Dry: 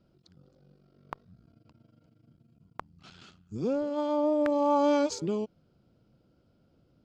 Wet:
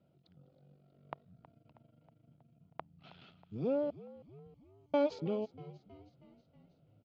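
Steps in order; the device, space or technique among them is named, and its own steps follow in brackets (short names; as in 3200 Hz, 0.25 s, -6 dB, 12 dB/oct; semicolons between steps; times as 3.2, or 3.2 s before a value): 3.9–4.94 inverse Chebyshev band-stop 310–4400 Hz, stop band 50 dB; frequency-shifting delay pedal into a guitar cabinet (frequency-shifting echo 0.319 s, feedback 60%, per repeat -63 Hz, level -18 dB; speaker cabinet 100–3600 Hz, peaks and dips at 150 Hz +4 dB, 210 Hz -3 dB, 350 Hz -5 dB, 670 Hz +6 dB, 1100 Hz -5 dB, 1600 Hz -6 dB); gain -3.5 dB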